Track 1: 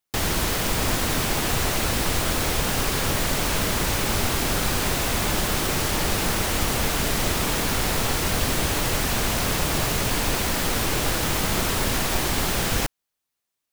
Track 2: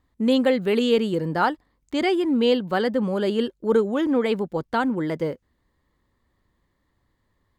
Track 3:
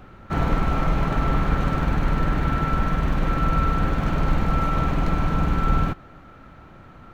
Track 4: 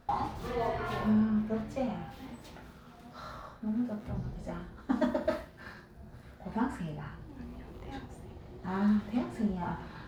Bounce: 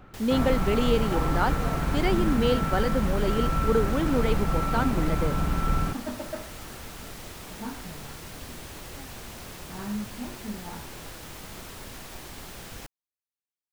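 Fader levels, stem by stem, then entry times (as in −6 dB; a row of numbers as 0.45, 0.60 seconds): −18.0, −5.0, −5.0, −5.5 decibels; 0.00, 0.00, 0.00, 1.05 seconds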